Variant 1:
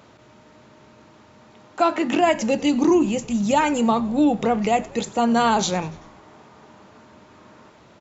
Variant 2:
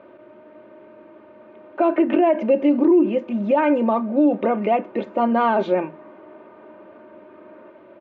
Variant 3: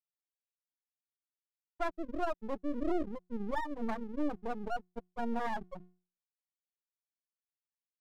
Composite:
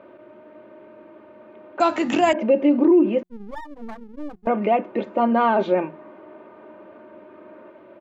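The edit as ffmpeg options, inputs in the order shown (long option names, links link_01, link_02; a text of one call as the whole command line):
ffmpeg -i take0.wav -i take1.wav -i take2.wav -filter_complex "[1:a]asplit=3[link_01][link_02][link_03];[link_01]atrim=end=1.802[link_04];[0:a]atrim=start=1.798:end=2.332[link_05];[link_02]atrim=start=2.328:end=3.232[link_06];[2:a]atrim=start=3.228:end=4.472[link_07];[link_03]atrim=start=4.468[link_08];[link_04][link_05]acrossfade=duration=0.004:curve1=hsin:curve2=hsin[link_09];[link_09][link_06]acrossfade=duration=0.004:curve1=hsin:curve2=hsin[link_10];[link_10][link_07]acrossfade=duration=0.004:curve1=hsin:curve2=hsin[link_11];[link_11][link_08]acrossfade=duration=0.004:curve1=hsin:curve2=hsin" out.wav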